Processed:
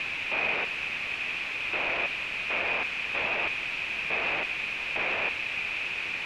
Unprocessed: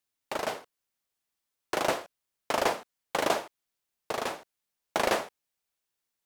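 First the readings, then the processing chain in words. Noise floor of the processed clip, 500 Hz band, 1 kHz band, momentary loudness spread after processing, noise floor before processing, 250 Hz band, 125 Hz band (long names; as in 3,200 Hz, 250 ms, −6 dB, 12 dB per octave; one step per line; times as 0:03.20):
−34 dBFS, −6.0 dB, −3.5 dB, 3 LU, −85 dBFS, −4.5 dB, +0.5 dB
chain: sign of each sample alone
low-pass with resonance 2,500 Hz, resonance Q 11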